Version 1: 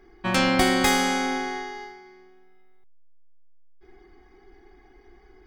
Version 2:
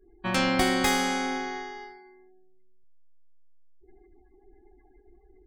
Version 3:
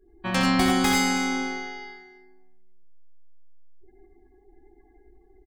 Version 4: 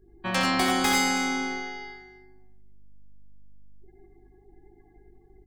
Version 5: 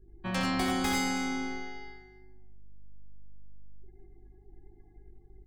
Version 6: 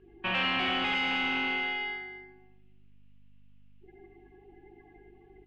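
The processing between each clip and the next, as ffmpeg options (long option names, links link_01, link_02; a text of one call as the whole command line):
ffmpeg -i in.wav -af "afftdn=noise_reduction=36:noise_floor=-50,volume=-3.5dB" out.wav
ffmpeg -i in.wav -af "aecho=1:1:64|87|102|322:0.355|0.531|0.501|0.15" out.wav
ffmpeg -i in.wav -filter_complex "[0:a]acrossover=split=380|1500[link_01][link_02][link_03];[link_01]asoftclip=type=tanh:threshold=-29.5dB[link_04];[link_04][link_02][link_03]amix=inputs=3:normalize=0,aeval=exprs='val(0)+0.001*(sin(2*PI*50*n/s)+sin(2*PI*2*50*n/s)/2+sin(2*PI*3*50*n/s)/3+sin(2*PI*4*50*n/s)/4+sin(2*PI*5*50*n/s)/5)':channel_layout=same" out.wav
ffmpeg -i in.wav -af "lowshelf=frequency=210:gain=12,volume=-8dB" out.wav
ffmpeg -i in.wav -filter_complex "[0:a]asplit=2[link_01][link_02];[link_02]highpass=frequency=720:poles=1,volume=28dB,asoftclip=type=tanh:threshold=-17dB[link_03];[link_01][link_03]amix=inputs=2:normalize=0,lowpass=frequency=2100:poles=1,volume=-6dB,lowpass=frequency=2800:width_type=q:width=5.6,volume=-8dB" out.wav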